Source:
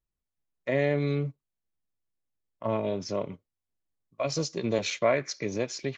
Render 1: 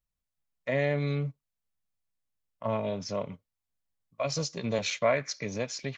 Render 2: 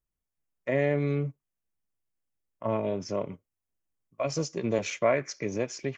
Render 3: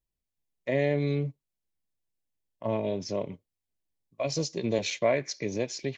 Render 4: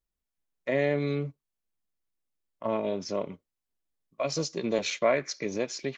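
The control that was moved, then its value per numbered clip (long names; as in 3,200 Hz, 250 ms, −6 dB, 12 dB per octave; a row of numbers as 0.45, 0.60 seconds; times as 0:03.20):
parametric band, centre frequency: 350, 4,000, 1,300, 110 Hertz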